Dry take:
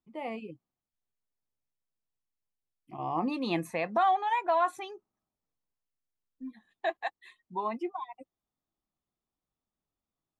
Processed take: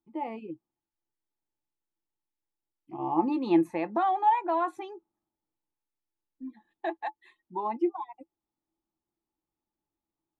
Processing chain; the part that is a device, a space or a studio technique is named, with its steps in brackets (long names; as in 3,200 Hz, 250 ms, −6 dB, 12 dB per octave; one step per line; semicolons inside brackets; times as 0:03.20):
inside a helmet (high-shelf EQ 3,300 Hz −8.5 dB; hollow resonant body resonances 330/860 Hz, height 15 dB, ringing for 70 ms)
level −2.5 dB